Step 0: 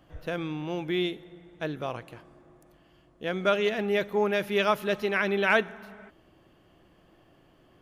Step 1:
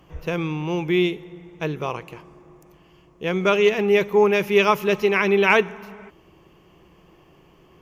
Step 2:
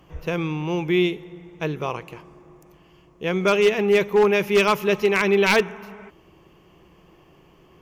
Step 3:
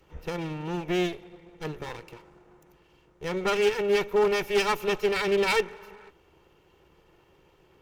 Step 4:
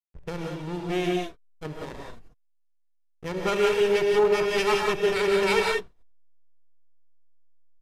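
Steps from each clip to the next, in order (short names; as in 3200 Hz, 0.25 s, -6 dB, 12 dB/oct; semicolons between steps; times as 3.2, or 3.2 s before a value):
ripple EQ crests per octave 0.77, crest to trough 8 dB; gain +6 dB
wavefolder -10 dBFS
minimum comb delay 2.2 ms; gain -5.5 dB
backlash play -30.5 dBFS; downsampling 32000 Hz; non-linear reverb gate 0.21 s rising, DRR 0 dB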